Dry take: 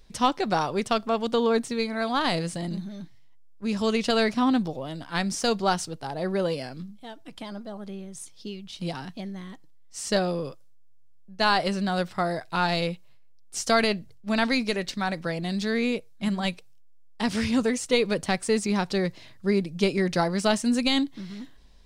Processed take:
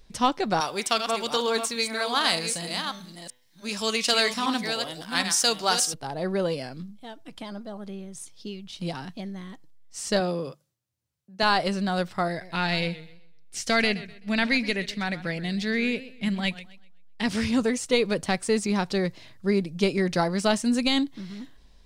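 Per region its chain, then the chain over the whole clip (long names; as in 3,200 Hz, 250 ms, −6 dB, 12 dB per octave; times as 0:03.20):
0:00.60–0:05.94: delay that plays each chunk backwards 386 ms, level −7 dB + spectral tilt +3.5 dB per octave + hum removal 125.1 Hz, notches 31
0:10.20–0:11.43: high-pass filter 100 Hz + mains-hum notches 50/100/150/200 Hz
0:12.28–0:17.26: drawn EQ curve 190 Hz 0 dB, 1,200 Hz −6 dB, 2,000 Hz +5 dB, 6,800 Hz −3 dB + feedback echo with a swinging delay time 128 ms, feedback 31%, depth 119 cents, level −16 dB
whole clip: no processing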